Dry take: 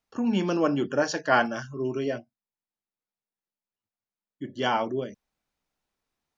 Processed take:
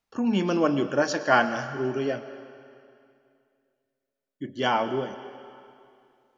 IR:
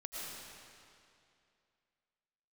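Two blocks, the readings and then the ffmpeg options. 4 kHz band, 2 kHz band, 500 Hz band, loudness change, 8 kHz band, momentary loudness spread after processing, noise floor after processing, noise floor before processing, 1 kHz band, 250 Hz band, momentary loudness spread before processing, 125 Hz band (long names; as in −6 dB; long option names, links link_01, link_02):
+1.5 dB, +2.0 dB, +1.5 dB, +1.5 dB, can't be measured, 19 LU, −84 dBFS, below −85 dBFS, +2.0 dB, +1.0 dB, 13 LU, +1.0 dB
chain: -filter_complex "[0:a]asplit=2[link_01][link_02];[link_02]equalizer=frequency=95:width=0.31:gain=-7[link_03];[1:a]atrim=start_sample=2205,lowpass=6100[link_04];[link_03][link_04]afir=irnorm=-1:irlink=0,volume=-8dB[link_05];[link_01][link_05]amix=inputs=2:normalize=0"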